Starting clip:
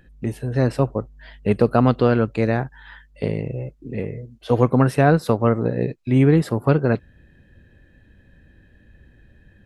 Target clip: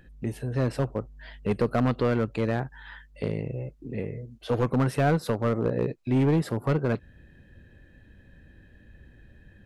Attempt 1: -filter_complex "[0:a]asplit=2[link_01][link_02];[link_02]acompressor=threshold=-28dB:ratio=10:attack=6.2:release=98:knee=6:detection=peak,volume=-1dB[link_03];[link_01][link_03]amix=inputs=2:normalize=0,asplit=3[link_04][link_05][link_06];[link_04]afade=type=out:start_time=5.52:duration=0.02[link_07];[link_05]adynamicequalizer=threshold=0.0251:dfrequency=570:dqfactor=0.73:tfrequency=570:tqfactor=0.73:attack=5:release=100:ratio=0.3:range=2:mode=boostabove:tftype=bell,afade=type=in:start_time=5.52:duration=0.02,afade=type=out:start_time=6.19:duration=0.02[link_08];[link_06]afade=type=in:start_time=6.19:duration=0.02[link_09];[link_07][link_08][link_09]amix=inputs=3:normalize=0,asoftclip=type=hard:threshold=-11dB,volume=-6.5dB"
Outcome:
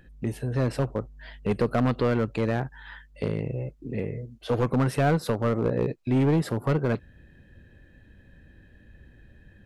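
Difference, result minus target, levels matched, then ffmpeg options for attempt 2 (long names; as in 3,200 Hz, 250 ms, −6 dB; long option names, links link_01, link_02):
downward compressor: peak gain reduction −9 dB
-filter_complex "[0:a]asplit=2[link_01][link_02];[link_02]acompressor=threshold=-38dB:ratio=10:attack=6.2:release=98:knee=6:detection=peak,volume=-1dB[link_03];[link_01][link_03]amix=inputs=2:normalize=0,asplit=3[link_04][link_05][link_06];[link_04]afade=type=out:start_time=5.52:duration=0.02[link_07];[link_05]adynamicequalizer=threshold=0.0251:dfrequency=570:dqfactor=0.73:tfrequency=570:tqfactor=0.73:attack=5:release=100:ratio=0.3:range=2:mode=boostabove:tftype=bell,afade=type=in:start_time=5.52:duration=0.02,afade=type=out:start_time=6.19:duration=0.02[link_08];[link_06]afade=type=in:start_time=6.19:duration=0.02[link_09];[link_07][link_08][link_09]amix=inputs=3:normalize=0,asoftclip=type=hard:threshold=-11dB,volume=-6.5dB"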